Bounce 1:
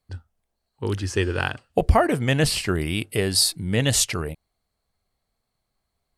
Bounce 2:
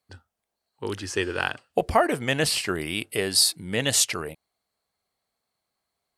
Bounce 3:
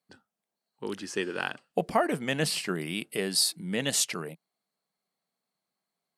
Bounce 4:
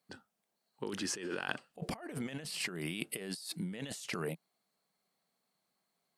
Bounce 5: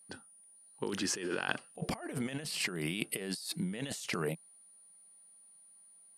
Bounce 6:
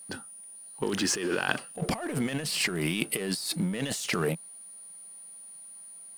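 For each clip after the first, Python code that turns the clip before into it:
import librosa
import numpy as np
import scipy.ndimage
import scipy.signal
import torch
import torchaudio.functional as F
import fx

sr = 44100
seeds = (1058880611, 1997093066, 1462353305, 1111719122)

y1 = fx.highpass(x, sr, hz=380.0, slope=6)
y2 = fx.low_shelf_res(y1, sr, hz=120.0, db=-12.0, q=3.0)
y2 = F.gain(torch.from_numpy(y2), -5.5).numpy()
y3 = fx.over_compress(y2, sr, threshold_db=-38.0, ratio=-1.0)
y3 = F.gain(torch.from_numpy(y3), -3.0).numpy()
y4 = y3 + 10.0 ** (-60.0 / 20.0) * np.sin(2.0 * np.pi * 9500.0 * np.arange(len(y3)) / sr)
y4 = F.gain(torch.from_numpy(y4), 3.0).numpy()
y5 = fx.law_mismatch(y4, sr, coded='mu')
y5 = F.gain(torch.from_numpy(y5), 5.0).numpy()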